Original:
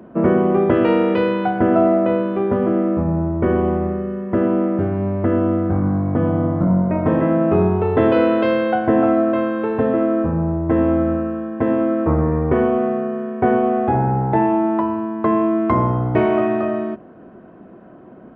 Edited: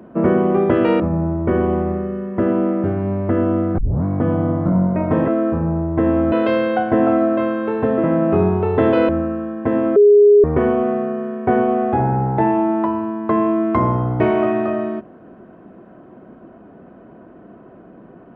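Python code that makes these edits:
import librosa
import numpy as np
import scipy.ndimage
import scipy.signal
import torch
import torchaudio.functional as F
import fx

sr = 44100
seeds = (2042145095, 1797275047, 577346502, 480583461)

y = fx.edit(x, sr, fx.cut(start_s=1.0, length_s=1.95),
    fx.tape_start(start_s=5.73, length_s=0.26),
    fx.swap(start_s=7.23, length_s=1.05, other_s=10.0, other_length_s=1.04),
    fx.bleep(start_s=11.91, length_s=0.48, hz=412.0, db=-6.0), tone=tone)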